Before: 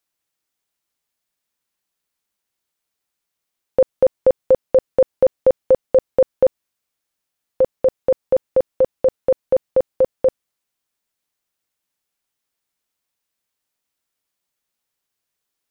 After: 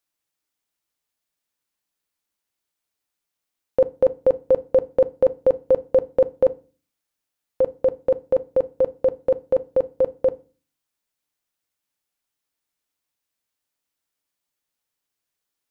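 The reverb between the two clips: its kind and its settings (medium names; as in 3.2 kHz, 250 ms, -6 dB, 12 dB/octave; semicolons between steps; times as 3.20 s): FDN reverb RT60 0.35 s, low-frequency decay 1.5×, high-frequency decay 0.85×, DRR 13.5 dB; trim -3 dB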